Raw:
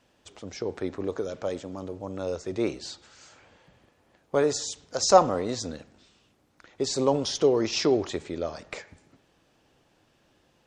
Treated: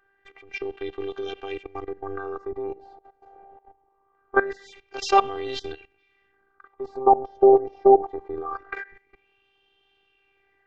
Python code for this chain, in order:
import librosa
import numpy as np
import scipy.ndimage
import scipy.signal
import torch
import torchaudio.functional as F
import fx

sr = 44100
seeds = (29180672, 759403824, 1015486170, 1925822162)

y = fx.filter_lfo_lowpass(x, sr, shape='sine', hz=0.23, low_hz=680.0, high_hz=3100.0, q=7.1)
y = fx.level_steps(y, sr, step_db=18)
y = fx.robotise(y, sr, hz=393.0)
y = y * librosa.db_to_amplitude(7.5)